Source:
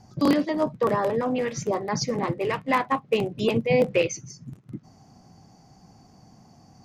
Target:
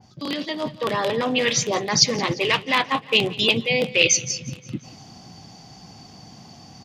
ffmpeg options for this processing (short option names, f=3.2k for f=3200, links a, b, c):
-filter_complex "[0:a]areverse,acompressor=threshold=-28dB:ratio=6,areverse,highpass=57,equalizer=f=3.4k:w=1.1:g=15,asplit=2[a][b];[b]aecho=0:1:175|350|525|700|875:0.1|0.059|0.0348|0.0205|0.0121[c];[a][c]amix=inputs=2:normalize=0,dynaudnorm=f=130:g=11:m=7dB,adynamicequalizer=threshold=0.0158:dfrequency=2100:dqfactor=0.7:tfrequency=2100:tqfactor=0.7:attack=5:release=100:ratio=0.375:range=2.5:mode=boostabove:tftype=highshelf"